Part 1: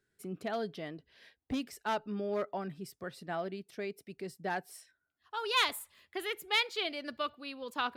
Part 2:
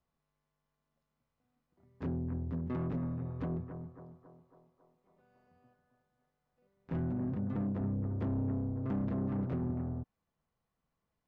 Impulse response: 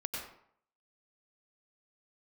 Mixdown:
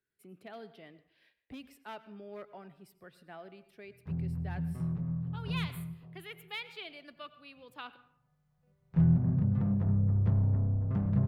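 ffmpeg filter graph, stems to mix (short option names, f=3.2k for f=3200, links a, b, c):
-filter_complex "[0:a]equalizer=f=2.5k:t=o:w=0.67:g=5,equalizer=f=6.3k:t=o:w=0.67:g=-7,equalizer=f=16k:t=o:w=0.67:g=4,volume=-13dB,asplit=2[a][b];[b]volume=-13.5dB[c];[1:a]lowshelf=f=210:t=q:w=3:g=8.5,bandreject=f=65.37:t=h:w=4,bandreject=f=130.74:t=h:w=4,bandreject=f=196.11:t=h:w=4,bandreject=f=261.48:t=h:w=4,bandreject=f=326.85:t=h:w=4,adelay=2050,volume=-2.5dB,afade=t=in:st=7.9:d=0.5:silence=0.354813,asplit=2[d][e];[e]volume=-11.5dB[f];[2:a]atrim=start_sample=2205[g];[c][f]amix=inputs=2:normalize=0[h];[h][g]afir=irnorm=-1:irlink=0[i];[a][d][i]amix=inputs=3:normalize=0,acrossover=split=320[j][k];[k]acompressor=threshold=-36dB:ratio=2[l];[j][l]amix=inputs=2:normalize=0"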